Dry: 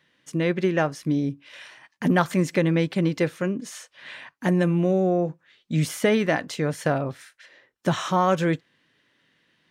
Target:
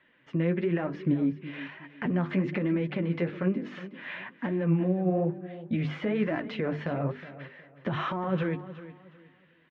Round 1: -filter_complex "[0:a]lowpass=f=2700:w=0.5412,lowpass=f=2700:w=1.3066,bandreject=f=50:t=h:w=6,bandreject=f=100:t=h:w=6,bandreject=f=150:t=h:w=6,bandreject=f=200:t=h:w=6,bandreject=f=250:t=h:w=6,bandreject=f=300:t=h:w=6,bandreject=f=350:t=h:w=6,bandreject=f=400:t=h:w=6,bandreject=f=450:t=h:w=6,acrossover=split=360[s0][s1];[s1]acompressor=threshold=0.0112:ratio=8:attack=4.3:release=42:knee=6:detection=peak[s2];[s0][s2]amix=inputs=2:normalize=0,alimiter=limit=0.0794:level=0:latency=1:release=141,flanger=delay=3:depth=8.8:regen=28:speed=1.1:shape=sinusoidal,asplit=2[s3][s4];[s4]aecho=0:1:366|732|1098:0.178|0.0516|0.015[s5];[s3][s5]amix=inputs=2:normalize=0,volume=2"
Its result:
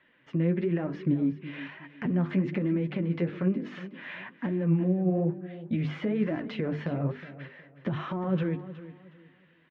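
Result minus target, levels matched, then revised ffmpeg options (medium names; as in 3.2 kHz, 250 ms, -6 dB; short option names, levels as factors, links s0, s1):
compression: peak gain reduction +8.5 dB
-filter_complex "[0:a]lowpass=f=2700:w=0.5412,lowpass=f=2700:w=1.3066,bandreject=f=50:t=h:w=6,bandreject=f=100:t=h:w=6,bandreject=f=150:t=h:w=6,bandreject=f=200:t=h:w=6,bandreject=f=250:t=h:w=6,bandreject=f=300:t=h:w=6,bandreject=f=350:t=h:w=6,bandreject=f=400:t=h:w=6,bandreject=f=450:t=h:w=6,acrossover=split=360[s0][s1];[s1]acompressor=threshold=0.0335:ratio=8:attack=4.3:release=42:knee=6:detection=peak[s2];[s0][s2]amix=inputs=2:normalize=0,alimiter=limit=0.0794:level=0:latency=1:release=141,flanger=delay=3:depth=8.8:regen=28:speed=1.1:shape=sinusoidal,asplit=2[s3][s4];[s4]aecho=0:1:366|732|1098:0.178|0.0516|0.015[s5];[s3][s5]amix=inputs=2:normalize=0,volume=2"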